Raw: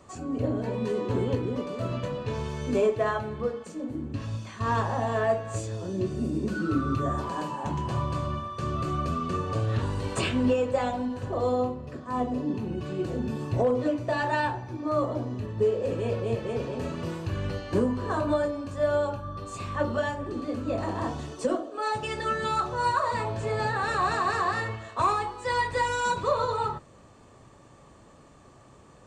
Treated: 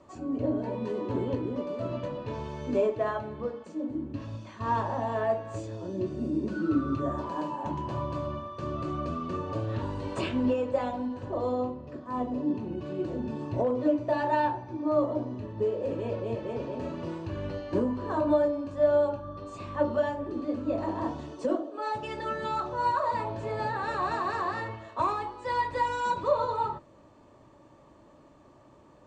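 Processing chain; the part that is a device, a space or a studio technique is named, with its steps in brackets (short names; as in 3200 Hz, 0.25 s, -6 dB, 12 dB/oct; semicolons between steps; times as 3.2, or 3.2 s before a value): inside a cardboard box (LPF 5700 Hz 12 dB/oct; small resonant body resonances 310/590/910 Hz, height 9 dB, ringing for 30 ms); gain -6.5 dB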